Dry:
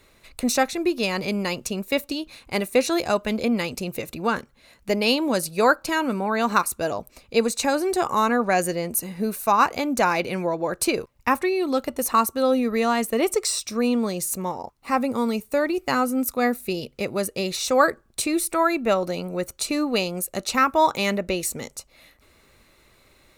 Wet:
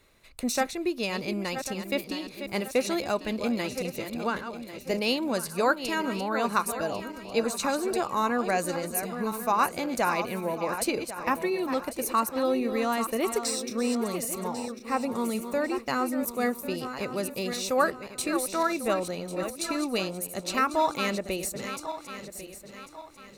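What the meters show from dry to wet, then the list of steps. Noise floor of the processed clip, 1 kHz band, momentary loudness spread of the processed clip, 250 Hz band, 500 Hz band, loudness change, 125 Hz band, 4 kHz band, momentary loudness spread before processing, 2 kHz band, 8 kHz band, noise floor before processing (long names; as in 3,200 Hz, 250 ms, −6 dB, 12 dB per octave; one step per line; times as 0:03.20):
−47 dBFS, −5.5 dB, 8 LU, −5.5 dB, −5.5 dB, −5.5 dB, −5.5 dB, −5.0 dB, 8 LU, −5.5 dB, −5.0 dB, −59 dBFS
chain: feedback delay that plays each chunk backwards 548 ms, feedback 59%, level −9 dB
level −6 dB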